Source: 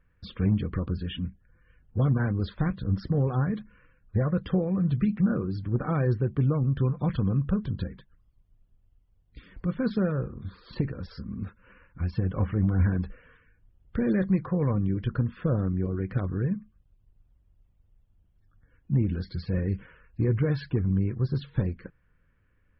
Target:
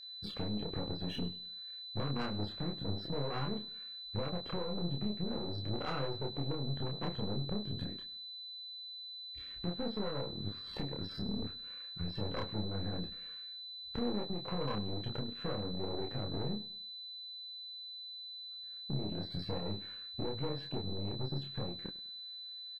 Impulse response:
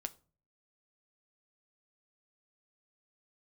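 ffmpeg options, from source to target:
-filter_complex "[0:a]aeval=exprs='if(lt(val(0),0),0.447*val(0),val(0))':c=same,afwtdn=0.0158,highpass=f=760:p=1,acompressor=threshold=0.00316:ratio=12,aeval=exprs='(tanh(398*val(0)+0.8)-tanh(0.8))/398':c=same,acontrast=37,aeval=exprs='val(0)+0.000708*sin(2*PI*4000*n/s)':c=same,asplit=2[s0][s1];[s1]adelay=29,volume=0.708[s2];[s0][s2]amix=inputs=2:normalize=0,asplit=2[s3][s4];[s4]aecho=0:1:101|202|303:0.1|0.038|0.0144[s5];[s3][s5]amix=inputs=2:normalize=0,volume=4.73" -ar 48000 -c:a aac -b:a 64k

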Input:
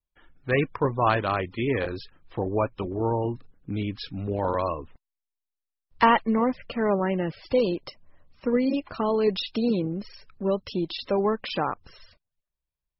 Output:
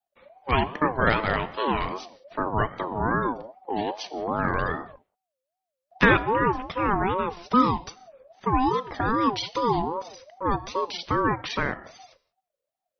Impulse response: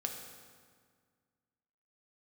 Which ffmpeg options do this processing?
-filter_complex "[0:a]asettb=1/sr,asplit=3[s0][s1][s2];[s0]atrim=end=3.104[s3];[s1]atrim=start=3.1:end=3.81,asetpts=PTS-STARTPTS,afade=t=in:d=0.004:c=qsin,afade=t=out:st=0.706:d=0.004:c=qsin,aecho=1:1:5.6:0.7,atrim=end_sample=31311[s4];[s2]atrim=start=3.806[s5];[s3][s4]acrossfade=d=0.004:c1=hsin:c2=qsin[s6];[s6][s5]acrossfade=d=0.004:c1=qsin:c2=hsin,asplit=2[s7][s8];[1:a]atrim=start_sample=2205,afade=t=out:st=0.24:d=0.01,atrim=end_sample=11025[s9];[s8][s9]afir=irnorm=-1:irlink=0,volume=0.501[s10];[s7][s10]amix=inputs=2:normalize=0,aeval=exprs='val(0)*sin(2*PI*640*n/s+640*0.2/2.5*sin(2*PI*2.5*n/s))':c=same"

